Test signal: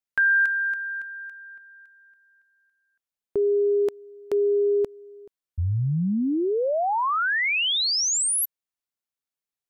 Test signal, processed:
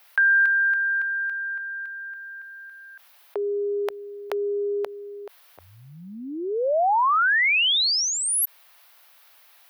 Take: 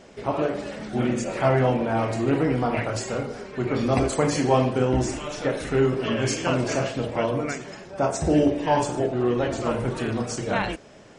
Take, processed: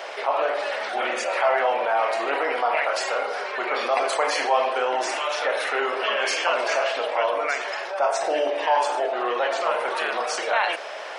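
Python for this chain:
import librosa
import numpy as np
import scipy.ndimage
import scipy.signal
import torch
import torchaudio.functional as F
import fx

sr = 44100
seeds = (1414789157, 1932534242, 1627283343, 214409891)

y = scipy.signal.sosfilt(scipy.signal.butter(4, 620.0, 'highpass', fs=sr, output='sos'), x)
y = fx.peak_eq(y, sr, hz=7400.0, db=-14.5, octaves=0.84)
y = fx.env_flatten(y, sr, amount_pct=50)
y = y * librosa.db_to_amplitude(2.0)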